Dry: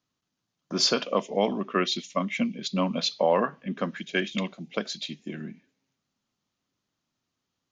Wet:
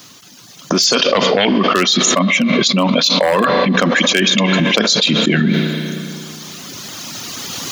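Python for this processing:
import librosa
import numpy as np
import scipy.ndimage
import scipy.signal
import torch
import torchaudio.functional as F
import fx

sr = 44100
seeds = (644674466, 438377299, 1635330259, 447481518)

y = fx.recorder_agc(x, sr, target_db=-15.5, rise_db_per_s=6.4, max_gain_db=30)
y = 10.0 ** (-15.5 / 20.0) * (np.abs((y / 10.0 ** (-15.5 / 20.0) + 3.0) % 4.0 - 2.0) - 1.0)
y = fx.lowpass_res(y, sr, hz=fx.line((0.83, 7600.0), (1.62, 2300.0)), q=3.0, at=(0.83, 1.62), fade=0.02)
y = fx.dereverb_blind(y, sr, rt60_s=1.4)
y = scipy.signal.sosfilt(scipy.signal.butter(2, 110.0, 'highpass', fs=sr, output='sos'), y)
y = fx.high_shelf(y, sr, hz=3200.0, db=10.0)
y = fx.rev_spring(y, sr, rt60_s=2.5, pass_ms=(32, 37), chirp_ms=50, drr_db=17.5)
y = fx.env_flatten(y, sr, amount_pct=100)
y = F.gain(torch.from_numpy(y), -3.0).numpy()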